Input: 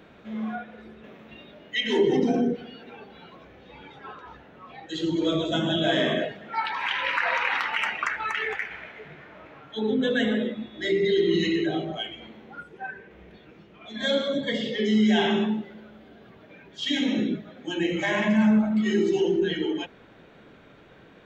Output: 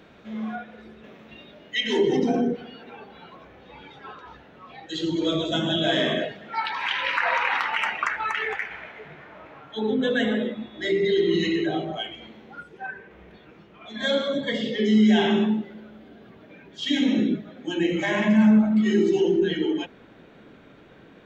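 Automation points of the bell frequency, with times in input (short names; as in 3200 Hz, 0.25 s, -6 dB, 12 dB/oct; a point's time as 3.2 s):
bell +4 dB 1.2 oct
5500 Hz
from 2.26 s 1000 Hz
from 3.79 s 4600 Hz
from 7.18 s 900 Hz
from 12.15 s 5200 Hz
from 12.86 s 1100 Hz
from 14.61 s 260 Hz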